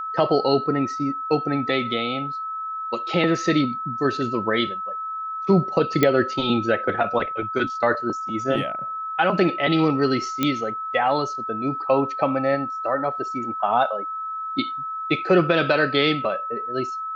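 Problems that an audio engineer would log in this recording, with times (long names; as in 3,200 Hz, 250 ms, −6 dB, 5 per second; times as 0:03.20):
whistle 1,300 Hz −27 dBFS
0:06.03: click −5 dBFS
0:10.43: click −7 dBFS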